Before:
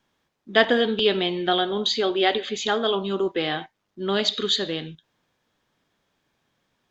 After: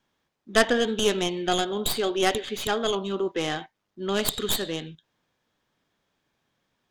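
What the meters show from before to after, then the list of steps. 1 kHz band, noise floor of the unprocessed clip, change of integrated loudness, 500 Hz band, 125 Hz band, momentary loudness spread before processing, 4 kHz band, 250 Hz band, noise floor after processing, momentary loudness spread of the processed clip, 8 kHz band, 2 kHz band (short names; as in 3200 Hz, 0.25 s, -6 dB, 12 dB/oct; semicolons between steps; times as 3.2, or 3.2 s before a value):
-2.5 dB, -77 dBFS, -3.0 dB, -2.5 dB, -0.5 dB, 9 LU, -5.0 dB, -2.0 dB, -80 dBFS, 9 LU, n/a, -3.0 dB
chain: tracing distortion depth 0.22 ms; gain -3 dB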